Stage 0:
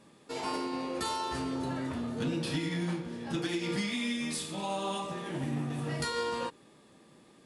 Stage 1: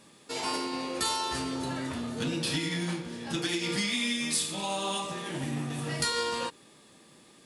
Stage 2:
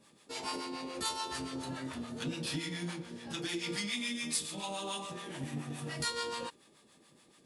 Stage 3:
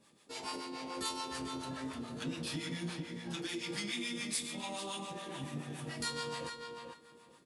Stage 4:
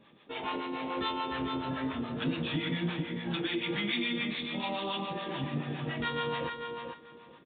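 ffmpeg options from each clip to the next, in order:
-af "highshelf=f=2100:g=9.5"
-filter_complex "[0:a]acrossover=split=650[s0][s1];[s0]aeval=exprs='val(0)*(1-0.7/2+0.7/2*cos(2*PI*7*n/s))':c=same[s2];[s1]aeval=exprs='val(0)*(1-0.7/2-0.7/2*cos(2*PI*7*n/s))':c=same[s3];[s2][s3]amix=inputs=2:normalize=0,volume=0.668"
-filter_complex "[0:a]asplit=2[s0][s1];[s1]adelay=443,lowpass=f=3100:p=1,volume=0.562,asplit=2[s2][s3];[s3]adelay=443,lowpass=f=3100:p=1,volume=0.21,asplit=2[s4][s5];[s5]adelay=443,lowpass=f=3100:p=1,volume=0.21[s6];[s0][s2][s4][s6]amix=inputs=4:normalize=0,volume=0.708"
-af "aresample=8000,aresample=44100,volume=2.37"

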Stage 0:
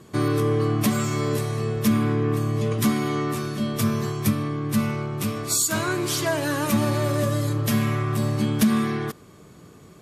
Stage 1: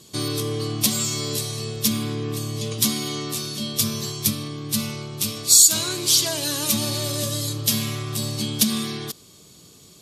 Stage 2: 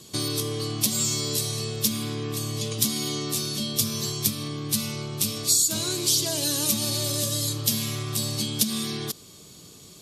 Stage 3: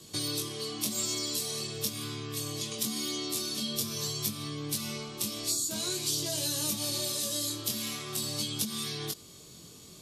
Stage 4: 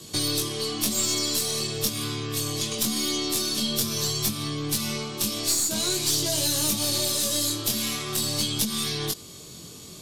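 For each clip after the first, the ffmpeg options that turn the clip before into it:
-af "highshelf=f=2600:t=q:w=1.5:g=14,volume=0.562"
-filter_complex "[0:a]acrossover=split=660|3500[s0][s1][s2];[s0]acompressor=threshold=0.0316:ratio=4[s3];[s1]acompressor=threshold=0.00891:ratio=4[s4];[s2]acompressor=threshold=0.0794:ratio=4[s5];[s3][s4][s5]amix=inputs=3:normalize=0,volume=1.19"
-filter_complex "[0:a]acrossover=split=240|1800[s0][s1][s2];[s0]acompressor=threshold=0.01:ratio=4[s3];[s1]acompressor=threshold=0.0158:ratio=4[s4];[s2]acompressor=threshold=0.0501:ratio=4[s5];[s3][s4][s5]amix=inputs=3:normalize=0,flanger=delay=19.5:depth=4.6:speed=0.46"
-af "aeval=exprs='(tanh(15.8*val(0)+0.4)-tanh(0.4))/15.8':c=same,volume=2.82"

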